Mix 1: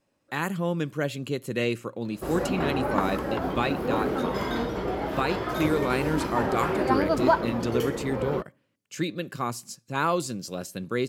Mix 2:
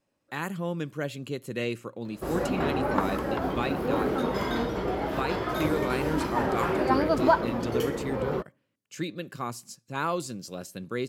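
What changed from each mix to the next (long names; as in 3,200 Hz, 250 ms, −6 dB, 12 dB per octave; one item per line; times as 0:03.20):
speech −4.0 dB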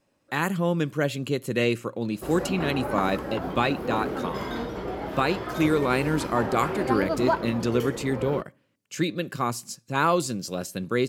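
speech +7.0 dB
background −3.0 dB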